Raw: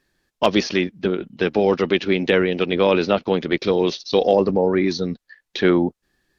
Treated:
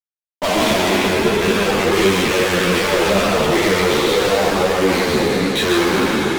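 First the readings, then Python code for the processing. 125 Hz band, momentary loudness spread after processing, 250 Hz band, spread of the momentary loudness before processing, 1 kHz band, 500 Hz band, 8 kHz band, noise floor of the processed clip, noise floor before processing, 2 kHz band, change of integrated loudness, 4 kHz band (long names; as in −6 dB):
+4.0 dB, 2 LU, +2.5 dB, 7 LU, +7.0 dB, +2.5 dB, can't be measured, below −85 dBFS, −80 dBFS, +8.5 dB, +4.0 dB, +8.5 dB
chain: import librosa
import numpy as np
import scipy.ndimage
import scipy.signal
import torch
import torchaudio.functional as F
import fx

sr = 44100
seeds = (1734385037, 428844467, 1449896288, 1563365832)

y = fx.spec_trails(x, sr, decay_s=2.43)
y = scipy.signal.sosfilt(scipy.signal.cheby1(5, 1.0, [100.0, 3900.0], 'bandpass', fs=sr, output='sos'), y)
y = fx.fuzz(y, sr, gain_db=31.0, gate_db=-37.0)
y = y + 10.0 ** (-3.5 / 20.0) * np.pad(y, (int(142 * sr / 1000.0), 0))[:len(y)]
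y = fx.ensemble(y, sr)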